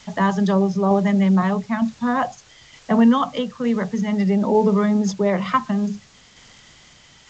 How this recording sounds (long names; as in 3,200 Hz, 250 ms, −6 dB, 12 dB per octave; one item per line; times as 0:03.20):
a quantiser's noise floor 8 bits, dither triangular
tremolo saw down 1.1 Hz, depth 30%
G.722